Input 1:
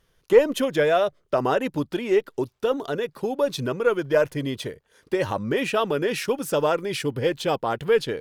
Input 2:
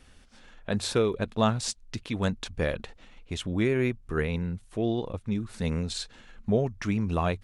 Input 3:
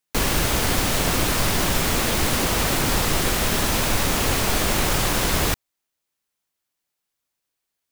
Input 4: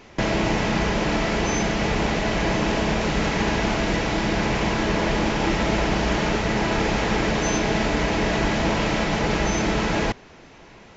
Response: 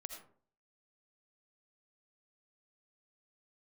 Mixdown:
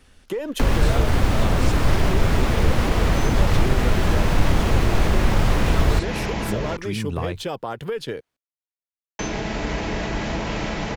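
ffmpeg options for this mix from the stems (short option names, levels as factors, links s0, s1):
-filter_complex "[0:a]alimiter=limit=0.158:level=0:latency=1:release=103,volume=1.12[s0];[1:a]volume=1.26[s1];[2:a]lowpass=f=1600:p=1,acontrast=50,adelay=450,volume=1.33[s2];[3:a]alimiter=limit=0.224:level=0:latency=1:release=493,adelay=1700,volume=1.12,asplit=3[s3][s4][s5];[s3]atrim=end=6.77,asetpts=PTS-STARTPTS,afade=t=out:st=6.766:d=0.004:c=hsin[s6];[s4]atrim=start=6.77:end=9.19,asetpts=PTS-STARTPTS,volume=0[s7];[s5]atrim=start=9.19,asetpts=PTS-STARTPTS,afade=t=in:d=0.004:c=hsin[s8];[s6][s7][s8]concat=n=3:v=0:a=1[s9];[s0][s1][s2][s9]amix=inputs=4:normalize=0,acrossover=split=120[s10][s11];[s11]acompressor=threshold=0.0501:ratio=2.5[s12];[s10][s12]amix=inputs=2:normalize=0"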